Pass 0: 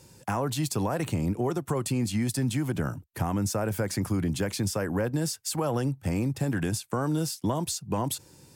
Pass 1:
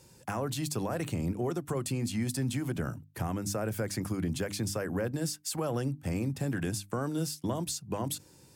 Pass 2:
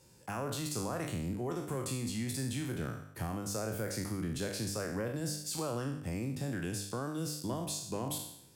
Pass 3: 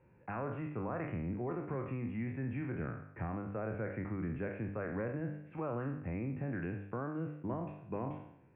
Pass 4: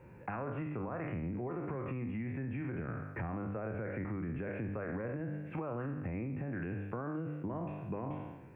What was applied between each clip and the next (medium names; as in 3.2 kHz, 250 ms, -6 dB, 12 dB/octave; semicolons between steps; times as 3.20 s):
dynamic bell 910 Hz, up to -5 dB, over -47 dBFS, Q 3.3; hum notches 50/100/150/200/250/300 Hz; trim -3.5 dB
spectral sustain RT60 0.74 s; trim -6 dB
steep low-pass 2.5 kHz 72 dB/octave; trim -1.5 dB
peak limiter -34.5 dBFS, peak gain reduction 7.5 dB; compression 4:1, threshold -47 dBFS, peak gain reduction 8 dB; trim +10.5 dB